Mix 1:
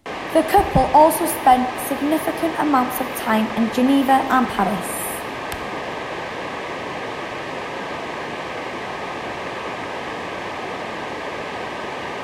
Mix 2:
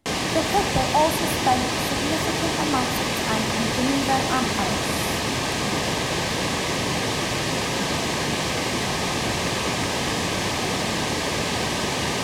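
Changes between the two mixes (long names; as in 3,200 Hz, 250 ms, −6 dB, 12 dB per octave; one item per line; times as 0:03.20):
speech −8.0 dB
background: remove three-way crossover with the lows and the highs turned down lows −12 dB, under 320 Hz, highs −18 dB, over 2,600 Hz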